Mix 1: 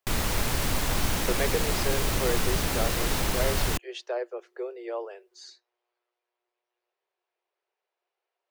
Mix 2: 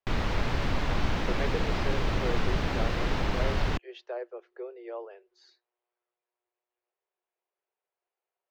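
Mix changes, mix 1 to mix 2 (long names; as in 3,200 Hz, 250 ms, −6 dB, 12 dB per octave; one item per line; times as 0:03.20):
speech −4.5 dB
master: add high-frequency loss of the air 220 metres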